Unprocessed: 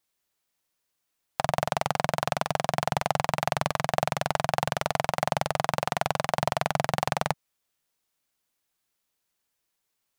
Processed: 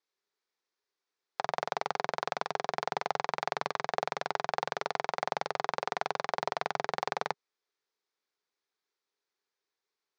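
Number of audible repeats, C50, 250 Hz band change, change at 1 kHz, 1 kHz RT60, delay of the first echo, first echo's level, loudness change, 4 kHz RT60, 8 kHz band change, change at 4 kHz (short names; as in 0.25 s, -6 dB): none, none, -13.5 dB, -5.0 dB, none, none, none, -6.0 dB, none, -12.0 dB, -7.0 dB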